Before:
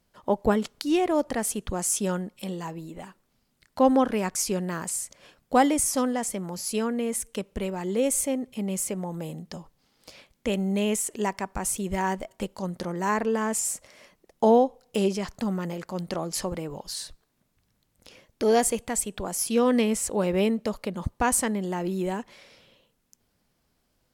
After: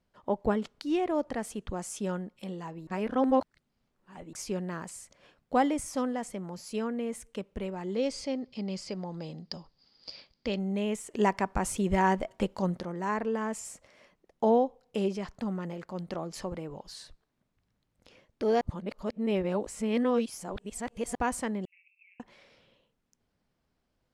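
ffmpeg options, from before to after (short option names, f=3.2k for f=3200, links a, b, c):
-filter_complex "[0:a]asettb=1/sr,asplit=3[a][b][c];[a]atrim=end=7.964[d];[b]atrim=start=7.96:end=10.59,asetpts=PTS-STARTPTS,afade=t=in:d=0.004:c=qsin,afade=t=out:st=2.626:d=0.004:c=qsin,lowpass=f=4.8k:t=q:w=14[e];[c]atrim=start=10.586[f];[d][e]acrossfade=d=0.004:c1=hsin:c2=qsin[g];[g][f]acrossfade=d=0.004:c1=qsin:c2=hsin,asettb=1/sr,asplit=3[h][i][j];[h]atrim=end=21.654[k];[i]atrim=start=21.65:end=22.2,asetpts=PTS-STARTPTS,afade=t=in:d=0.004:c=qsin,afade=t=out:st=0.546:d=0.004:c=qsin,asuperpass=centerf=2400:order=8:qfactor=4.7[l];[j]atrim=start=22.196[m];[k][l]acrossfade=d=0.004:c1=hsin:c2=qsin[n];[n][m]acrossfade=d=0.004:c1=qsin:c2=hsin,asplit=7[o][p][q][r][s][t][u];[o]atrim=end=2.872[v];[p]atrim=start=2.868:end=4.332,asetpts=PTS-STARTPTS,areverse[w];[q]atrim=start=4.328:end=11.142[x];[r]atrim=start=11.138:end=12.802,asetpts=PTS-STARTPTS,volume=7.5dB[y];[s]atrim=start=12.798:end=18.612[z];[t]atrim=start=18.608:end=21.152,asetpts=PTS-STARTPTS,areverse[aa];[u]atrim=start=21.148[ab];[v][w]acrossfade=d=0.004:c1=hsin:c2=hsin[ac];[ac][x]acrossfade=d=0.004:c1=hsin:c2=hsin[ad];[ad][y]acrossfade=d=0.004:c1=hsin:c2=hsin[ae];[ae][z]acrossfade=d=0.004:c1=hsin:c2=hsin[af];[af][aa]acrossfade=d=0.004:c1=hsin:c2=hsin[ag];[ag][ab]acrossfade=d=0.004:c1=hsin:c2=hsin,aemphasis=mode=reproduction:type=50fm,volume=-5.5dB"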